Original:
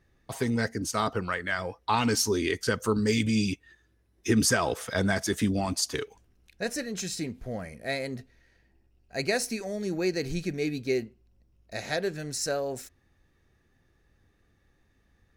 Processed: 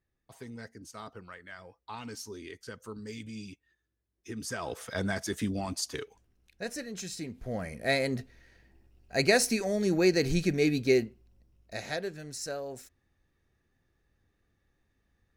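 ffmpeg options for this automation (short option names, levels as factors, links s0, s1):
-af "volume=1.58,afade=t=in:st=4.43:d=0.41:silence=0.281838,afade=t=in:st=7.27:d=0.58:silence=0.334965,afade=t=out:st=10.86:d=1.26:silence=0.281838"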